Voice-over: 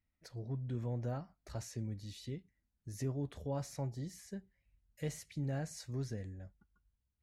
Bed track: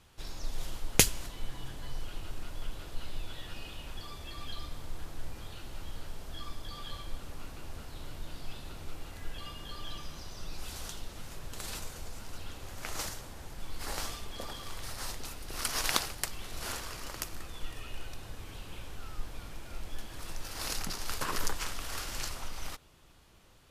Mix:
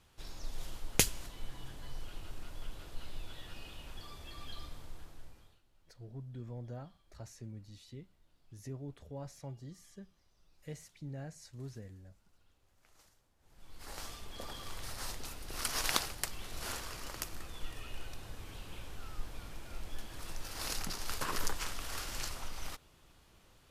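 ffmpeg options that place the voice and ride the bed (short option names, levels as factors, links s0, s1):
-filter_complex "[0:a]adelay=5650,volume=0.501[s0];[1:a]volume=11.2,afade=t=out:st=4.64:d=0.97:silence=0.0668344,afade=t=in:st=13.39:d=1.23:silence=0.0501187[s1];[s0][s1]amix=inputs=2:normalize=0"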